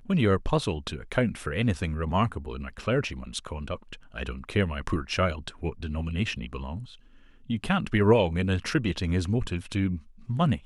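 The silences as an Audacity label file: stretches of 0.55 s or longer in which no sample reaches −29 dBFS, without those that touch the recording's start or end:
6.780000	7.500000	silence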